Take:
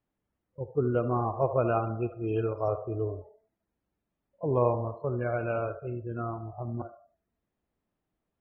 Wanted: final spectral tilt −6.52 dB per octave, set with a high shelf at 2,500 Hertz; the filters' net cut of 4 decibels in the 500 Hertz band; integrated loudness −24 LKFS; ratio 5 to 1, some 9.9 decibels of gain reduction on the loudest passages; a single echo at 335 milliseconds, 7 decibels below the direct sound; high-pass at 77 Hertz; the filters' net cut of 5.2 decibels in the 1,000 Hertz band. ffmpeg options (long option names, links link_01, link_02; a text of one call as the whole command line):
ffmpeg -i in.wav -af "highpass=77,equalizer=frequency=500:width_type=o:gain=-3.5,equalizer=frequency=1000:width_type=o:gain=-6.5,highshelf=frequency=2500:gain=3.5,acompressor=threshold=-35dB:ratio=5,aecho=1:1:335:0.447,volume=16dB" out.wav